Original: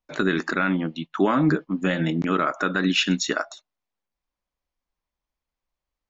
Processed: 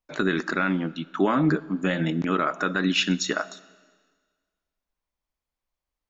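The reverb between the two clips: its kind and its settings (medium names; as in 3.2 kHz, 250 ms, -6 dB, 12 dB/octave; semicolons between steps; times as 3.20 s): algorithmic reverb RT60 1.6 s, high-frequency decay 1×, pre-delay 5 ms, DRR 19.5 dB; trim -1.5 dB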